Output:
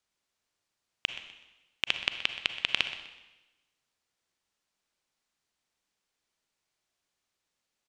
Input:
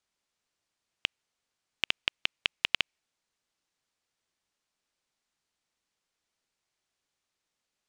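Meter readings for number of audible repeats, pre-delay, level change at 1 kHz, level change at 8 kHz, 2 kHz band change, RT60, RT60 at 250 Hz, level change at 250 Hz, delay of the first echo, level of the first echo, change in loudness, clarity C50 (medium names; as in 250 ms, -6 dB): 2, 31 ms, +0.5 dB, +0.5 dB, +1.0 dB, 1.1 s, 1.1 s, +0.5 dB, 125 ms, -14.0 dB, +0.5 dB, 8.0 dB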